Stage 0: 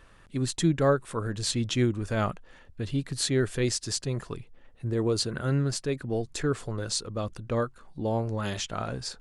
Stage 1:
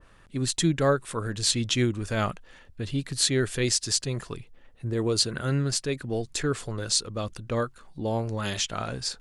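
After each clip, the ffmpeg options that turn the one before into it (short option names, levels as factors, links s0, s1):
-af "adynamicequalizer=threshold=0.00631:dfrequency=1700:dqfactor=0.7:tfrequency=1700:tqfactor=0.7:attack=5:release=100:ratio=0.375:range=3:mode=boostabove:tftype=highshelf"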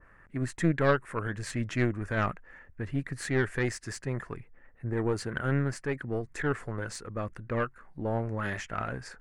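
-af "highshelf=f=2600:t=q:w=3:g=-11.5,aeval=exprs='0.355*(cos(1*acos(clip(val(0)/0.355,-1,1)))-cos(1*PI/2))+0.0501*(cos(4*acos(clip(val(0)/0.355,-1,1)))-cos(4*PI/2))':c=same,volume=0.668"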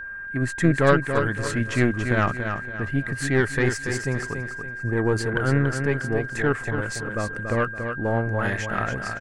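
-filter_complex "[0:a]aeval=exprs='val(0)+0.0112*sin(2*PI*1600*n/s)':c=same,asplit=2[s0][s1];[s1]aecho=0:1:283|566|849|1132:0.447|0.161|0.0579|0.0208[s2];[s0][s2]amix=inputs=2:normalize=0,volume=2.11"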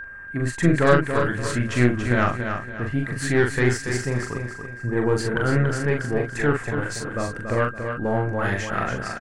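-filter_complex "[0:a]asplit=2[s0][s1];[s1]adelay=41,volume=0.631[s2];[s0][s2]amix=inputs=2:normalize=0"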